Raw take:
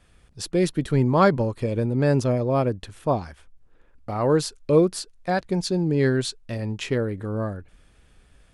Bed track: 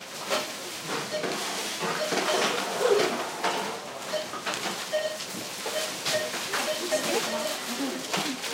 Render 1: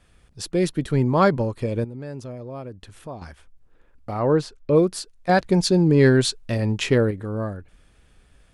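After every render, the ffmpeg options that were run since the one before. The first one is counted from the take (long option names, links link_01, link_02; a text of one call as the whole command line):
ffmpeg -i in.wav -filter_complex "[0:a]asettb=1/sr,asplit=3[link_01][link_02][link_03];[link_01]atrim=end=1.844[link_04];[link_02]atrim=start=1.84:end=3.22,asetpts=PTS-STARTPTS,afade=type=in:duration=0.004:curve=qsin,afade=type=out:start_time=1.376:duration=0.004:curve=qsin,acompressor=threshold=-42dB:ratio=2:attack=3.2:release=140:knee=1:detection=peak[link_05];[link_03]atrim=start=3.216[link_06];[link_04][link_05]acrossfade=duration=0.004:curve1=hsin:curve2=qsin[link_07];[link_07][link_06]acrossfade=duration=0.004:curve1=qsin:curve2=hsin,asplit=3[link_08][link_09][link_10];[link_08]afade=type=out:start_time=4.19:duration=0.02[link_11];[link_09]aemphasis=mode=reproduction:type=75fm,afade=type=in:start_time=4.19:duration=0.02,afade=type=out:start_time=4.75:duration=0.02[link_12];[link_10]afade=type=in:start_time=4.75:duration=0.02[link_13];[link_11][link_12][link_13]amix=inputs=3:normalize=0,asettb=1/sr,asplit=3[link_14][link_15][link_16];[link_14]atrim=end=5.294[link_17];[link_15]atrim=start=5.29:end=7.11,asetpts=PTS-STARTPTS,afade=type=in:duration=0.004:curve=qsin,afade=type=out:start_time=1.816:duration=0.004:curve=qsin,acontrast=51[link_18];[link_16]atrim=start=7.106[link_19];[link_17][link_18]acrossfade=duration=0.004:curve1=hsin:curve2=qsin[link_20];[link_20][link_19]acrossfade=duration=0.004:curve1=qsin:curve2=hsin" out.wav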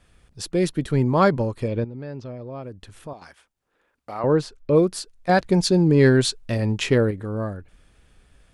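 ffmpeg -i in.wav -filter_complex "[0:a]asettb=1/sr,asplit=3[link_01][link_02][link_03];[link_01]atrim=end=1.684[link_04];[link_02]atrim=start=1.68:end=2.63,asetpts=PTS-STARTPTS,afade=type=in:duration=0.004:curve=qsin,afade=type=out:start_time=0.946:duration=0.004:curve=qsin,lowpass=frequency=5000:width=0.5412,lowpass=frequency=5000:width=1.3066[link_05];[link_03]atrim=start=2.626[link_06];[link_04][link_05]acrossfade=duration=0.004:curve1=hsin:curve2=qsin[link_07];[link_07][link_06]acrossfade=duration=0.004:curve1=qsin:curve2=hsin,asettb=1/sr,asplit=3[link_08][link_09][link_10];[link_08]atrim=end=3.134[link_11];[link_09]atrim=start=3.13:end=4.24,asetpts=PTS-STARTPTS,afade=type=in:duration=0.004:curve=qsin,afade=type=out:start_time=1.106:duration=0.004:curve=qsin,highpass=frequency=670:poles=1[link_12];[link_10]atrim=start=4.236[link_13];[link_11][link_12]acrossfade=duration=0.004:curve1=hsin:curve2=qsin[link_14];[link_14][link_13]acrossfade=duration=0.004:curve1=qsin:curve2=hsin" out.wav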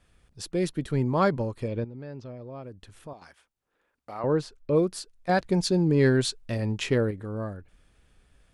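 ffmpeg -i in.wav -af "volume=-5.5dB" out.wav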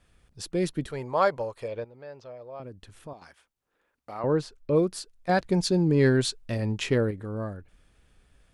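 ffmpeg -i in.wav -filter_complex "[0:a]asettb=1/sr,asplit=3[link_01][link_02][link_03];[link_01]atrim=end=0.914[link_04];[link_02]atrim=start=0.91:end=2.6,asetpts=PTS-STARTPTS,afade=type=in:duration=0.004:curve=qsin,afade=type=out:start_time=1.686:duration=0.004:curve=qsin,lowshelf=frequency=390:width_type=q:width=1.5:gain=-11.5[link_05];[link_03]atrim=start=2.596[link_06];[link_04][link_05]acrossfade=duration=0.004:curve1=hsin:curve2=qsin[link_07];[link_07][link_06]acrossfade=duration=0.004:curve1=qsin:curve2=hsin" out.wav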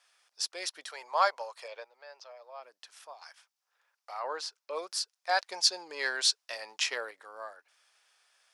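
ffmpeg -i in.wav -af "highpass=frequency=730:width=0.5412,highpass=frequency=730:width=1.3066,equalizer=frequency=5300:width=2:gain=9.5" out.wav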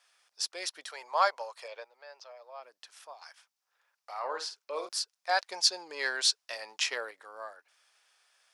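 ffmpeg -i in.wav -filter_complex "[0:a]asettb=1/sr,asplit=3[link_01][link_02][link_03];[link_01]atrim=end=4.124[link_04];[link_02]atrim=start=4.12:end=4.89,asetpts=PTS-STARTPTS,afade=type=in:duration=0.004:curve=qsin,afade=type=out:start_time=0.766:duration=0.004:curve=qsin,asplit=2[link_05][link_06];[link_06]adelay=50,volume=-8dB[link_07];[link_05][link_07]amix=inputs=2:normalize=0,atrim=end_sample=33957[link_08];[link_03]atrim=start=4.886[link_09];[link_04][link_08]acrossfade=duration=0.004:curve1=hsin:curve2=qsin[link_10];[link_10][link_09]acrossfade=duration=0.004:curve1=qsin:curve2=hsin" out.wav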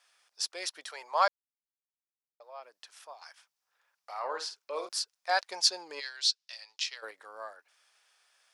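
ffmpeg -i in.wav -filter_complex "[0:a]asplit=3[link_01][link_02][link_03];[link_01]afade=type=out:start_time=5.99:duration=0.02[link_04];[link_02]bandpass=frequency=4300:width_type=q:width=1.6,afade=type=in:start_time=5.99:duration=0.02,afade=type=out:start_time=7.02:duration=0.02[link_05];[link_03]afade=type=in:start_time=7.02:duration=0.02[link_06];[link_04][link_05][link_06]amix=inputs=3:normalize=0,asplit=3[link_07][link_08][link_09];[link_07]atrim=end=1.28,asetpts=PTS-STARTPTS,afade=type=out:start_time=1.276:duration=0.004:curve=hsin[link_10];[link_08]atrim=start=1.28:end=2.4,asetpts=PTS-STARTPTS,volume=0[link_11];[link_09]atrim=start=2.4,asetpts=PTS-STARTPTS,afade=type=in:duration=0.004:curve=hsin[link_12];[link_10][link_11][link_12]concat=n=3:v=0:a=1" out.wav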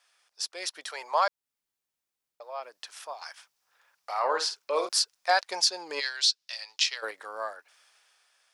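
ffmpeg -i in.wav -af "alimiter=limit=-21dB:level=0:latency=1:release=314,dynaudnorm=framelen=170:gausssize=11:maxgain=8.5dB" out.wav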